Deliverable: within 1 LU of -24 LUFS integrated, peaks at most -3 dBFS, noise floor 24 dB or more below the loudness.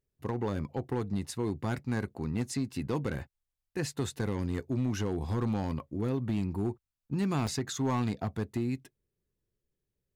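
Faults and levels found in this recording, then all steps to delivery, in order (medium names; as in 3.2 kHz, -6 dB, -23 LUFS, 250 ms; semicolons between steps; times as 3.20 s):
clipped samples 1.6%; clipping level -23.5 dBFS; dropouts 1; longest dropout 2.0 ms; loudness -33.5 LUFS; peak level -23.5 dBFS; loudness target -24.0 LUFS
-> clip repair -23.5 dBFS; interpolate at 7.47 s, 2 ms; trim +9.5 dB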